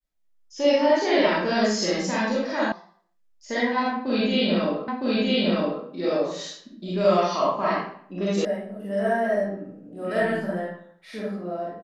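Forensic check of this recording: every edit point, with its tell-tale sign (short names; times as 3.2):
2.72 sound cut off
4.88 repeat of the last 0.96 s
8.45 sound cut off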